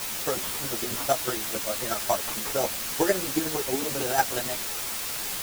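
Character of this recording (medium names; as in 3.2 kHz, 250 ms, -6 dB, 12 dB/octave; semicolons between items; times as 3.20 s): aliases and images of a low sample rate 6.7 kHz; chopped level 11 Hz, depth 60%, duty 20%; a quantiser's noise floor 6-bit, dither triangular; a shimmering, thickened sound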